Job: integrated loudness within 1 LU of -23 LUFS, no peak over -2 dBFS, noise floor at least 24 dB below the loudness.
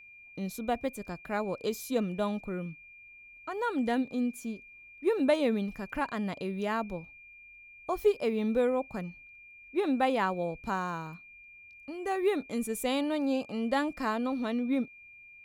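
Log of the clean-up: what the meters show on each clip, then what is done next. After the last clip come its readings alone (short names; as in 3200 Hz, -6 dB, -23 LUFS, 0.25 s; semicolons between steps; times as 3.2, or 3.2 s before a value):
steady tone 2400 Hz; tone level -50 dBFS; loudness -31.5 LUFS; peak -12.0 dBFS; loudness target -23.0 LUFS
-> notch 2400 Hz, Q 30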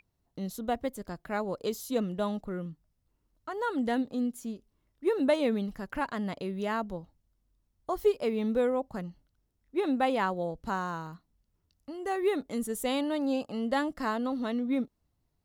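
steady tone none; loudness -31.5 LUFS; peak -12.5 dBFS; loudness target -23.0 LUFS
-> gain +8.5 dB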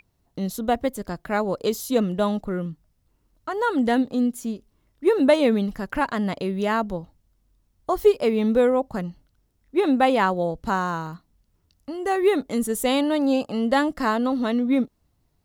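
loudness -23.0 LUFS; peak -4.0 dBFS; noise floor -69 dBFS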